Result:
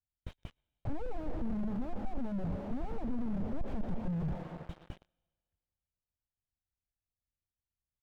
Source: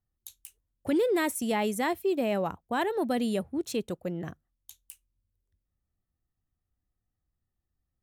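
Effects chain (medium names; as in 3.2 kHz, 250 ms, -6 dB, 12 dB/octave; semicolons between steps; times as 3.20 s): comb filter that takes the minimum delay 1.3 ms; low-pass that closes with the level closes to 620 Hz, closed at -30 dBFS; on a send at -15 dB: reverberation RT60 2.1 s, pre-delay 110 ms; on the sum: waveshaping leveller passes 2; resampled via 8 kHz; waveshaping leveller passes 3; slew-rate limiter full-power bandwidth 6.9 Hz; trim -4 dB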